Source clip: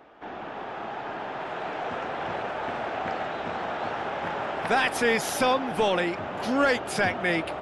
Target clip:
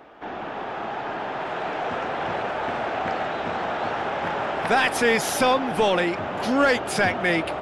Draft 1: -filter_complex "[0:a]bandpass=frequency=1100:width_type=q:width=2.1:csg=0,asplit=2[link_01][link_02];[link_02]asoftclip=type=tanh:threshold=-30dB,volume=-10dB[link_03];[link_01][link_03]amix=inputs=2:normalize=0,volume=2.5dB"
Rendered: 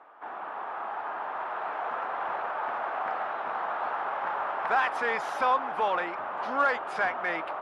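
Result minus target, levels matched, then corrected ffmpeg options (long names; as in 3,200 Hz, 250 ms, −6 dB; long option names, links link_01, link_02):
1,000 Hz band +3.5 dB
-filter_complex "[0:a]asplit=2[link_01][link_02];[link_02]asoftclip=type=tanh:threshold=-30dB,volume=-10dB[link_03];[link_01][link_03]amix=inputs=2:normalize=0,volume=2.5dB"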